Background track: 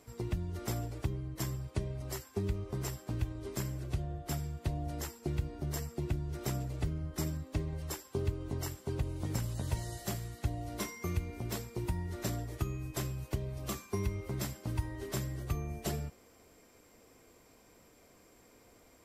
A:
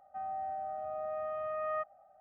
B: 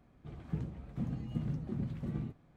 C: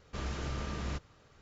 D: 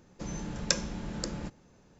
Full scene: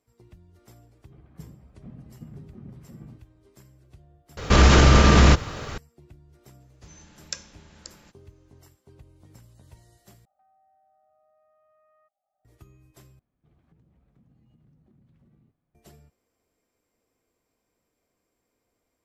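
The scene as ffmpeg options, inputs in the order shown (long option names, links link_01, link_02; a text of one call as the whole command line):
ffmpeg -i bed.wav -i cue0.wav -i cue1.wav -i cue2.wav -i cue3.wav -filter_complex "[2:a]asplit=2[link_01][link_02];[0:a]volume=-16.5dB[link_03];[link_01]lowpass=2800[link_04];[3:a]alimiter=level_in=31.5dB:limit=-1dB:release=50:level=0:latency=1[link_05];[4:a]tiltshelf=frequency=910:gain=-7[link_06];[1:a]acompressor=threshold=-47dB:ratio=12:attack=0.31:release=706:knee=1:detection=peak[link_07];[link_02]acompressor=threshold=-41dB:ratio=6:attack=3.2:release=140:knee=1:detection=peak[link_08];[link_03]asplit=4[link_09][link_10][link_11][link_12];[link_09]atrim=end=4.374[link_13];[link_05]atrim=end=1.41,asetpts=PTS-STARTPTS,volume=-4.5dB[link_14];[link_10]atrim=start=5.776:end=10.254[link_15];[link_07]atrim=end=2.2,asetpts=PTS-STARTPTS,volume=-14dB[link_16];[link_11]atrim=start=12.446:end=13.194[link_17];[link_08]atrim=end=2.56,asetpts=PTS-STARTPTS,volume=-16dB[link_18];[link_12]atrim=start=15.746[link_19];[link_04]atrim=end=2.56,asetpts=PTS-STARTPTS,volume=-7dB,afade=type=in:duration=0.004:curve=hsin,afade=type=out:start_time=2.556:duration=0.004:curve=hsin,adelay=860[link_20];[link_06]atrim=end=1.99,asetpts=PTS-STARTPTS,volume=-12dB,afade=type=in:duration=0.004:curve=hsin,afade=type=out:start_time=1.986:duration=0.004:curve=hsin,adelay=6620[link_21];[link_13][link_14]acrossfade=duration=0.004:curve1=hsin:curve2=hsin[link_22];[link_22][link_15]acrossfade=duration=0.004:curve1=hsin:curve2=hsin[link_23];[link_23][link_16]acrossfade=duration=0.004:curve1=hsin:curve2=hsin[link_24];[link_24][link_17]acrossfade=duration=0.004:curve1=hsin:curve2=hsin[link_25];[link_25][link_18]acrossfade=duration=0.004:curve1=hsin:curve2=hsin[link_26];[link_26][link_19]acrossfade=duration=0.004:curve1=hsin:curve2=hsin[link_27];[link_27][link_20][link_21]amix=inputs=3:normalize=0" out.wav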